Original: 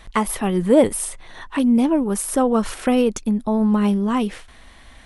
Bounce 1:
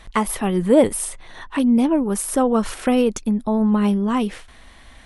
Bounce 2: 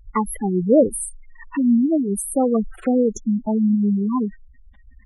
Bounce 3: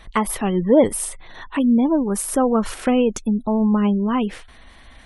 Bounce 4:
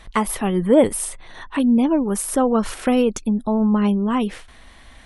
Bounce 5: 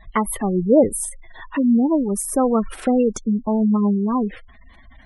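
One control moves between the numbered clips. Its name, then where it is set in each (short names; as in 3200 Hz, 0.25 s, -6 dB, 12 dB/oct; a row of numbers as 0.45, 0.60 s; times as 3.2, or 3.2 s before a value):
spectral gate, under each frame's peak: -60, -10, -35, -45, -20 dB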